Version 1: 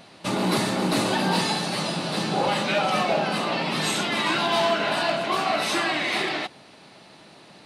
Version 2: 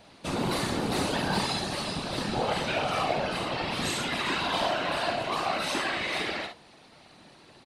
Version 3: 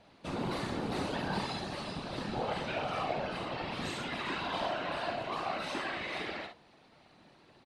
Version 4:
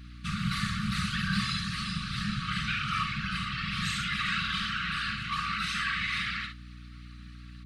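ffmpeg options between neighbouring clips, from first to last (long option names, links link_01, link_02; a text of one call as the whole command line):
ffmpeg -i in.wav -filter_complex "[0:a]asplit=2[link_01][link_02];[link_02]aecho=0:1:51|70:0.473|0.211[link_03];[link_01][link_03]amix=inputs=2:normalize=0,afftfilt=real='hypot(re,im)*cos(2*PI*random(0))':imag='hypot(re,im)*sin(2*PI*random(1))':win_size=512:overlap=0.75" out.wav
ffmpeg -i in.wav -af "aemphasis=mode=reproduction:type=50kf,volume=-6dB" out.wav
ffmpeg -i in.wav -af "afftfilt=real='re*(1-between(b*sr/4096,220,1100))':imag='im*(1-between(b*sr/4096,220,1100))':win_size=4096:overlap=0.75,aeval=exprs='val(0)+0.00224*(sin(2*PI*60*n/s)+sin(2*PI*2*60*n/s)/2+sin(2*PI*3*60*n/s)/3+sin(2*PI*4*60*n/s)/4+sin(2*PI*5*60*n/s)/5)':channel_layout=same,volume=8.5dB" out.wav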